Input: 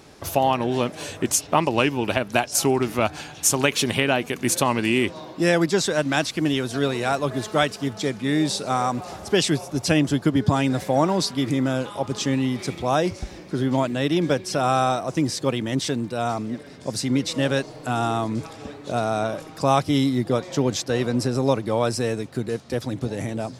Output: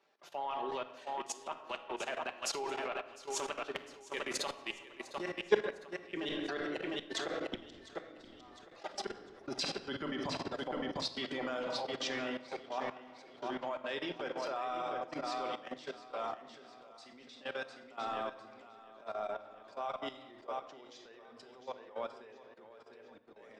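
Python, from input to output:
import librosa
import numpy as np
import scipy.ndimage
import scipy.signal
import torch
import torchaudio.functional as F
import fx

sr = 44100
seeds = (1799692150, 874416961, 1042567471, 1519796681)

p1 = fx.doppler_pass(x, sr, speed_mps=13, closest_m=3.6, pass_at_s=8.01)
p2 = scipy.signal.sosfilt(scipy.signal.butter(2, 520.0, 'highpass', fs=sr, output='sos'), p1)
p3 = fx.dereverb_blind(p2, sr, rt60_s=0.77)
p4 = scipy.signal.sosfilt(scipy.signal.butter(2, 3600.0, 'lowpass', fs=sr, output='sos'), p3)
p5 = fx.transient(p4, sr, attack_db=-8, sustain_db=-12)
p6 = fx.rider(p5, sr, range_db=5, speed_s=2.0)
p7 = p5 + (p6 * librosa.db_to_amplitude(-0.5))
p8 = fx.gate_flip(p7, sr, shuts_db=-30.0, range_db=-38)
p9 = p8 + fx.echo_feedback(p8, sr, ms=704, feedback_pct=38, wet_db=-7.0, dry=0)
p10 = fx.room_shoebox(p9, sr, seeds[0], volume_m3=1700.0, walls='mixed', distance_m=1.2)
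p11 = fx.level_steps(p10, sr, step_db=13)
p12 = fx.band_widen(p11, sr, depth_pct=40)
y = p12 * librosa.db_to_amplitude(14.5)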